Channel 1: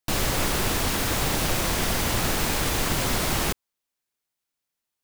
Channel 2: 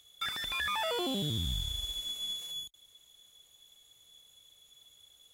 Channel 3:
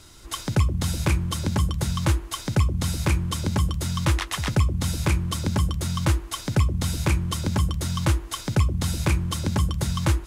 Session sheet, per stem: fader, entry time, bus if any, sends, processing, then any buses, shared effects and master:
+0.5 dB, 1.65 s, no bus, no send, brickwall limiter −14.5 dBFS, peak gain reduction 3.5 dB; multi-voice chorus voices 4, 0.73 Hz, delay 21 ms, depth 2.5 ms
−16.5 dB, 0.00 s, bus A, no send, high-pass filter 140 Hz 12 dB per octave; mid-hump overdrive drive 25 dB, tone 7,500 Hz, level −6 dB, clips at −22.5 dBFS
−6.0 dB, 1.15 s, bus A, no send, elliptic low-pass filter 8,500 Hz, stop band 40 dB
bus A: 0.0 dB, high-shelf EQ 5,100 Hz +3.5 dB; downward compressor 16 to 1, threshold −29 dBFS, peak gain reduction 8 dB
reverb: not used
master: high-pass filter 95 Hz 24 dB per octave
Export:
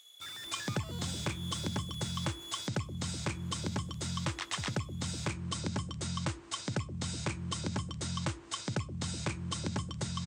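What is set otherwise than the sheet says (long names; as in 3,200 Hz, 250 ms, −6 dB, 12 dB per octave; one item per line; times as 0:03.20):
stem 1: muted
stem 3: entry 1.15 s → 0.20 s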